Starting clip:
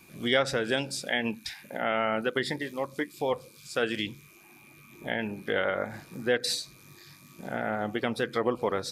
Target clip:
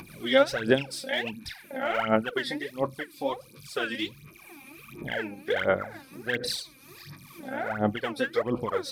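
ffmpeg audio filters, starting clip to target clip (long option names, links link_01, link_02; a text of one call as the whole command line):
ffmpeg -i in.wav -af "equalizer=frequency=7100:width_type=o:width=0.26:gain=-10,aphaser=in_gain=1:out_gain=1:delay=3.8:decay=0.79:speed=1.4:type=sinusoidal,acompressor=mode=upward:threshold=-36dB:ratio=2.5,volume=-4dB" out.wav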